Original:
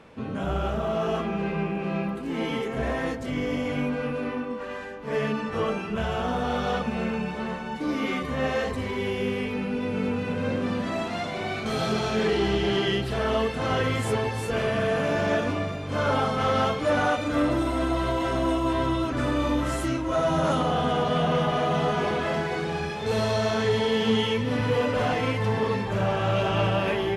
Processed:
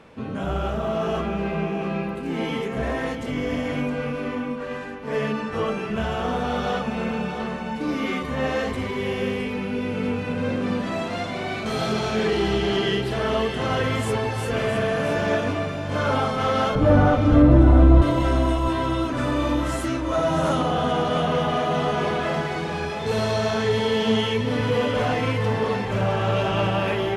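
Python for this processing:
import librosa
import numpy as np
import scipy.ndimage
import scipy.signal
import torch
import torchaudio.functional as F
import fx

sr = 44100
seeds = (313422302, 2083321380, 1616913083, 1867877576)

p1 = fx.tilt_eq(x, sr, slope=-4.5, at=(16.75, 18.02))
p2 = p1 + fx.echo_single(p1, sr, ms=665, db=-10.0, dry=0)
y = p2 * 10.0 ** (1.5 / 20.0)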